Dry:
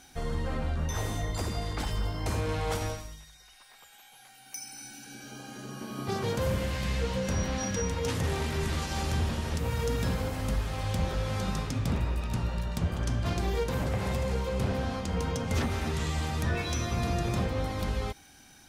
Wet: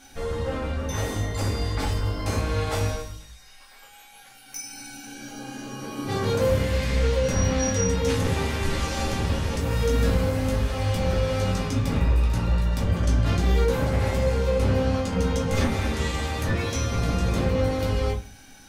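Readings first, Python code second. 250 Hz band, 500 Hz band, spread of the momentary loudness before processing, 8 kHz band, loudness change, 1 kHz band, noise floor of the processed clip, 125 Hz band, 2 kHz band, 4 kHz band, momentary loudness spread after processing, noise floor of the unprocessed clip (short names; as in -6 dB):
+6.0 dB, +8.0 dB, 10 LU, +6.0 dB, +6.5 dB, +4.5 dB, -49 dBFS, +6.0 dB, +5.0 dB, +5.0 dB, 12 LU, -55 dBFS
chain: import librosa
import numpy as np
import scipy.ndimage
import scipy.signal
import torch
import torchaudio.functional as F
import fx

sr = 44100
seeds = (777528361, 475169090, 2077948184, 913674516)

y = fx.room_shoebox(x, sr, seeds[0], volume_m3=140.0, walls='furnished', distance_m=2.3)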